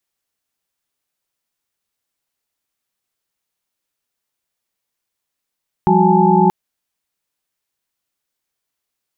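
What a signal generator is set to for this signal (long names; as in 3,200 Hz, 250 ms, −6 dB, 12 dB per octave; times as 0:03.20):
held notes F3/G3/F#4/G#5/A5 sine, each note −15.5 dBFS 0.63 s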